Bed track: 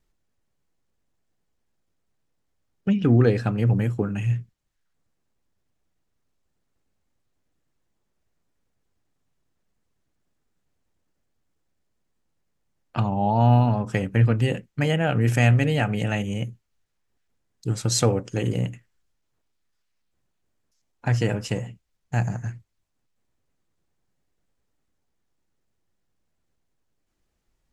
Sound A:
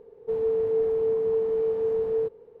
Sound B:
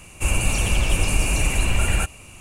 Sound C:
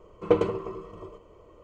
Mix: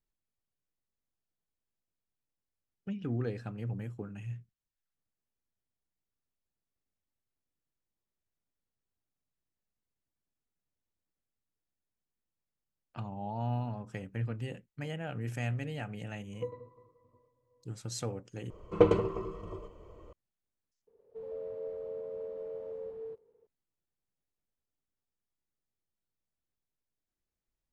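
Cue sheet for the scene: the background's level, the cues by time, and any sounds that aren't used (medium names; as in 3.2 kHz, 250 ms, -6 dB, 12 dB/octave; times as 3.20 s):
bed track -16.5 dB
16.11 s: add C -8.5 dB + pitch-class resonator B, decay 0.2 s
18.50 s: replace with C -2 dB + bass shelf 140 Hz +7.5 dB
20.87 s: replace with A -17 dB + ever faster or slower copies 121 ms, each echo +3 st, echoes 2, each echo -6 dB
not used: B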